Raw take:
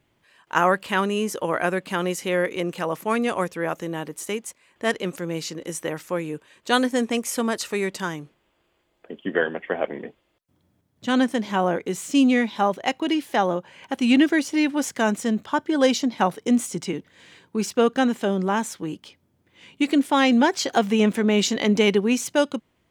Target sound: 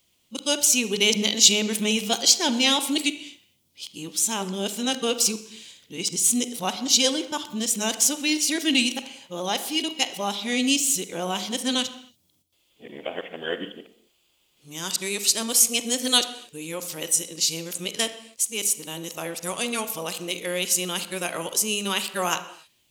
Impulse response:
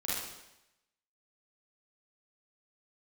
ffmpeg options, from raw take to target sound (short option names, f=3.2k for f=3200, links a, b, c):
-filter_complex "[0:a]areverse,aexciter=amount=9:drive=3.2:freq=2.6k,asplit=2[a][b];[1:a]atrim=start_sample=2205,afade=t=out:st=0.34:d=0.01,atrim=end_sample=15435,highshelf=f=4k:g=-9.5[c];[b][c]afir=irnorm=-1:irlink=0,volume=-13dB[d];[a][d]amix=inputs=2:normalize=0,volume=-8.5dB"